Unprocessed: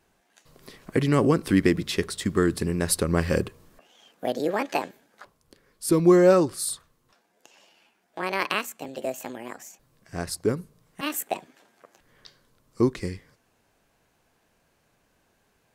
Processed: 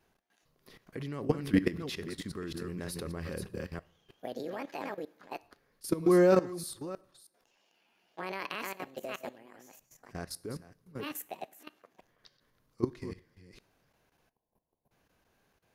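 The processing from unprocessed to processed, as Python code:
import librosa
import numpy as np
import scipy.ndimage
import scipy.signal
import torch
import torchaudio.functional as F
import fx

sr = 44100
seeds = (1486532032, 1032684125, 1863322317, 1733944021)

y = fx.reverse_delay(x, sr, ms=316, wet_db=-7.0)
y = fx.spec_box(y, sr, start_s=14.3, length_s=0.61, low_hz=1100.0, high_hz=9900.0, gain_db=-17)
y = fx.level_steps(y, sr, step_db=17)
y = fx.peak_eq(y, sr, hz=8000.0, db=-9.5, octaves=0.29)
y = fx.rev_double_slope(y, sr, seeds[0], early_s=0.57, late_s=1.9, knee_db=-24, drr_db=18.0)
y = y * 10.0 ** (-4.0 / 20.0)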